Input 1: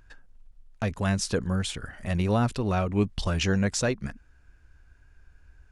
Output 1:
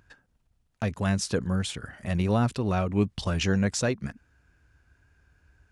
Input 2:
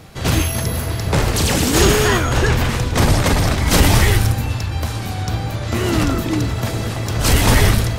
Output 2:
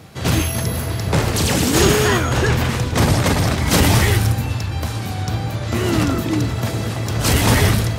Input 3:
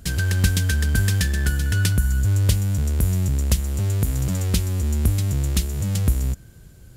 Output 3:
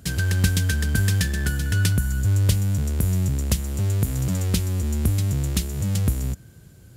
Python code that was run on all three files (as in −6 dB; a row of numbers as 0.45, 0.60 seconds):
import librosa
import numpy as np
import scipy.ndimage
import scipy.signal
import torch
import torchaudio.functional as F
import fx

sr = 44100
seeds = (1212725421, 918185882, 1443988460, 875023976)

y = scipy.signal.sosfilt(scipy.signal.butter(2, 88.0, 'highpass', fs=sr, output='sos'), x)
y = fx.low_shelf(y, sr, hz=200.0, db=3.5)
y = F.gain(torch.from_numpy(y), -1.0).numpy()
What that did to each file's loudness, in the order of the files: 0.0, −0.5, −1.0 LU